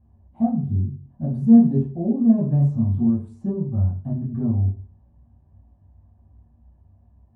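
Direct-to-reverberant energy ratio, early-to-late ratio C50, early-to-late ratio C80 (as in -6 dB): -11.0 dB, 6.0 dB, 11.5 dB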